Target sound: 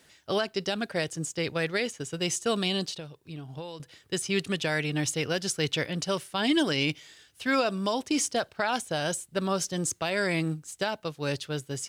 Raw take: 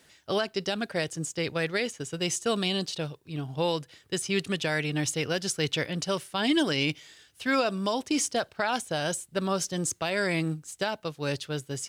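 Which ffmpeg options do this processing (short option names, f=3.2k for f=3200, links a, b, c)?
-filter_complex "[0:a]asettb=1/sr,asplit=3[a][b][c];[a]atrim=end=2.924[d];[b]atrim=start=2.92:end=3.8,asetpts=PTS-STARTPTS,afade=t=in:d=0.004:c=qsin,afade=t=out:st=0.876:d=0.004:c=qsin,acompressor=threshold=-37dB:ratio=6[e];[c]atrim=start=3.796[f];[d][e]acrossfade=d=0.004:c1=hsin:c2=qsin[g];[g][f]acrossfade=d=0.004:c1=qsin:c2=hsin"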